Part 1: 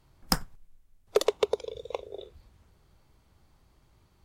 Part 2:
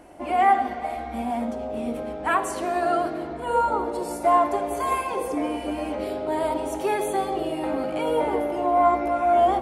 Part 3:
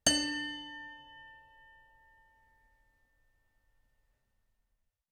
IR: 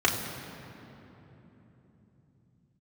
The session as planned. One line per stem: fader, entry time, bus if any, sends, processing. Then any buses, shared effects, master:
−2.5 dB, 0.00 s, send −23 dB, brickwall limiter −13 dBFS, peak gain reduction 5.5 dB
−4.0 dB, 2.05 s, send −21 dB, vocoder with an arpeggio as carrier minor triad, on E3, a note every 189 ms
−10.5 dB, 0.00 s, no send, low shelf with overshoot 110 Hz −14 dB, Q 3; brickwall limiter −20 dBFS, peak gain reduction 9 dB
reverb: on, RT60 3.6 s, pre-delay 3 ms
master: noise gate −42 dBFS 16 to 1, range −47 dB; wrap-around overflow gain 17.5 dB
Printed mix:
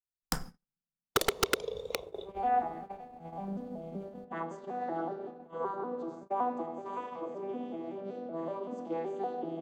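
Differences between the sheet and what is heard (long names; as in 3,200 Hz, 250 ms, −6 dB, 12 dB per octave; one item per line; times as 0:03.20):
stem 2 −4.0 dB → −13.5 dB
stem 3: muted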